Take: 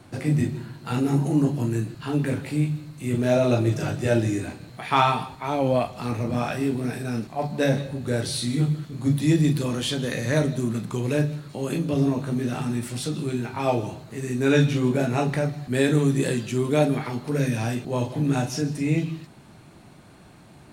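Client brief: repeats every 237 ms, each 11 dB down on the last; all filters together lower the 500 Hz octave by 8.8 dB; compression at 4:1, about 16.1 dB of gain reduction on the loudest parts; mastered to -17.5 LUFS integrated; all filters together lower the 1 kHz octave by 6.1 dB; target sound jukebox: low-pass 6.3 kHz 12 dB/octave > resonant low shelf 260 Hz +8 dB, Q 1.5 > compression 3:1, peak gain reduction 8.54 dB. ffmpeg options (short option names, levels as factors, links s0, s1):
-af "equalizer=f=500:t=o:g=-8.5,equalizer=f=1000:t=o:g=-4.5,acompressor=threshold=0.0126:ratio=4,lowpass=6300,lowshelf=f=260:t=q:w=1.5:g=8,aecho=1:1:237|474|711:0.282|0.0789|0.0221,acompressor=threshold=0.0178:ratio=3,volume=10.6"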